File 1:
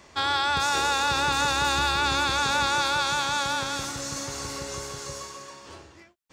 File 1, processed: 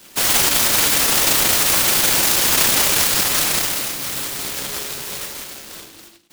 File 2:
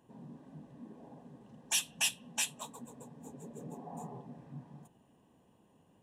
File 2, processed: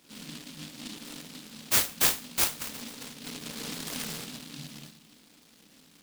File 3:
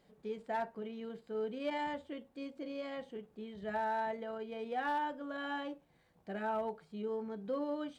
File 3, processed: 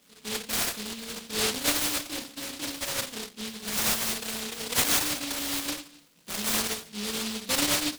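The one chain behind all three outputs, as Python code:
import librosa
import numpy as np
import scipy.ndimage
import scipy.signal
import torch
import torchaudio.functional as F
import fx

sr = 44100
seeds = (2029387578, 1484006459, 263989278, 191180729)

y = scipy.signal.sosfilt(scipy.signal.butter(2, 260.0, 'highpass', fs=sr, output='sos'), x)
y = fx.dynamic_eq(y, sr, hz=350.0, q=1.2, threshold_db=-48.0, ratio=4.0, max_db=-4)
y = fx.room_shoebox(y, sr, seeds[0], volume_m3=340.0, walls='furnished', distance_m=2.1)
y = fx.noise_mod_delay(y, sr, seeds[1], noise_hz=3600.0, depth_ms=0.48)
y = y * 10.0 ** (6.0 / 20.0)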